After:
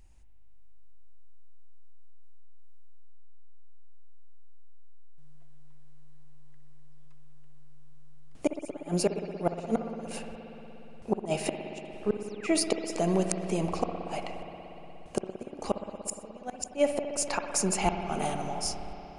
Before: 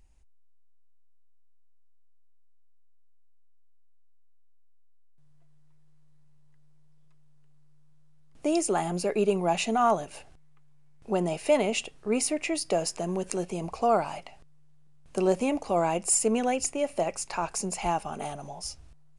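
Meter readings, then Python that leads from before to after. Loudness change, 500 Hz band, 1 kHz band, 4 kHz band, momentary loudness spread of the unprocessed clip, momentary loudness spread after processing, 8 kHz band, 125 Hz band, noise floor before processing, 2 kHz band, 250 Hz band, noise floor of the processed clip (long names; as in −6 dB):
−4.0 dB, −4.0 dB, −6.0 dB, −1.5 dB, 13 LU, 15 LU, −3.5 dB, +0.5 dB, −53 dBFS, −3.5 dB, −2.0 dB, −47 dBFS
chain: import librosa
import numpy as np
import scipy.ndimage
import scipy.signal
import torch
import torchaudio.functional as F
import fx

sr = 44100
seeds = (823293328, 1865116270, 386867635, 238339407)

y = fx.spec_paint(x, sr, seeds[0], shape='fall', start_s=12.25, length_s=0.22, low_hz=1100.0, high_hz=9100.0, level_db=-32.0)
y = fx.dynamic_eq(y, sr, hz=1000.0, q=4.9, threshold_db=-43.0, ratio=4.0, max_db=-4)
y = fx.gate_flip(y, sr, shuts_db=-18.0, range_db=-31)
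y = fx.rev_spring(y, sr, rt60_s=3.8, pass_ms=(59,), chirp_ms=70, drr_db=5.0)
y = y * 10.0 ** (4.0 / 20.0)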